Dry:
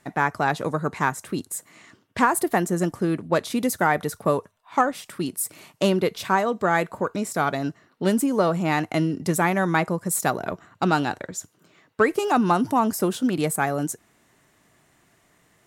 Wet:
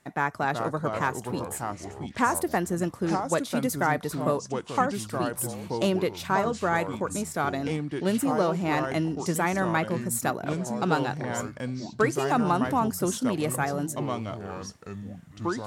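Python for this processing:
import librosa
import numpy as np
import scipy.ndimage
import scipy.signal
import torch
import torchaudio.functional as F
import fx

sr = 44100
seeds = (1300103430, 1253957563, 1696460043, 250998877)

y = fx.echo_pitch(x, sr, ms=335, semitones=-4, count=3, db_per_echo=-6.0)
y = y * librosa.db_to_amplitude(-4.5)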